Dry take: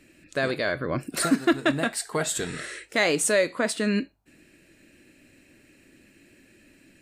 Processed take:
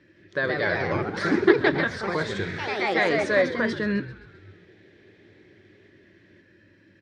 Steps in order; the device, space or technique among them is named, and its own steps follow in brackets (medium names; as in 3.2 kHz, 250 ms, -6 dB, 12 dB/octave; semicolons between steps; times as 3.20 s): rippled EQ curve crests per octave 1.2, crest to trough 7 dB; ever faster or slower copies 164 ms, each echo +2 st, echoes 3; frequency-shifting delay pedal into a guitar cabinet (frequency-shifting echo 131 ms, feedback 56%, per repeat -75 Hz, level -16 dB; cabinet simulation 83–4400 Hz, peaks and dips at 99 Hz +10 dB, 280 Hz -5 dB, 400 Hz +5 dB, 680 Hz -6 dB, 1.5 kHz +4 dB, 2.8 kHz -10 dB); trim -1 dB